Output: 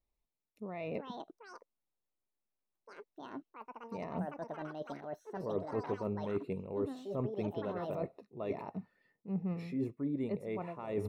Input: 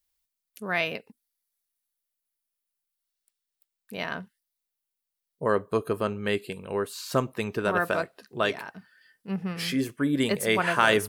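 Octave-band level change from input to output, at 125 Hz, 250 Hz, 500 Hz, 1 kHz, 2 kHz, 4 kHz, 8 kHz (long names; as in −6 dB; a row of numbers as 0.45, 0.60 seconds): −6.0 dB, −7.5 dB, −9.5 dB, −13.5 dB, −24.0 dB, −25.0 dB, below −25 dB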